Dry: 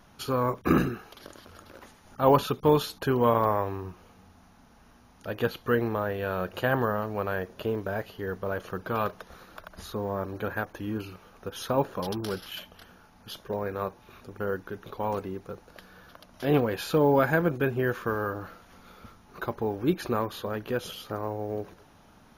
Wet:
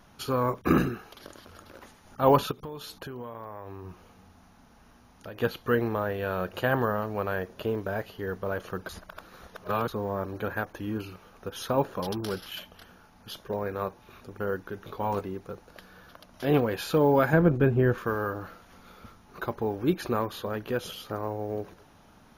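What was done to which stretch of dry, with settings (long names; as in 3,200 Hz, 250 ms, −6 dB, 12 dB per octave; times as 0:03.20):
0:02.51–0:05.42: downward compressor 8 to 1, threshold −36 dBFS
0:08.89–0:09.88: reverse
0:14.75–0:15.21: double-tracking delay 20 ms −8 dB
0:17.33–0:17.98: spectral tilt −2.5 dB per octave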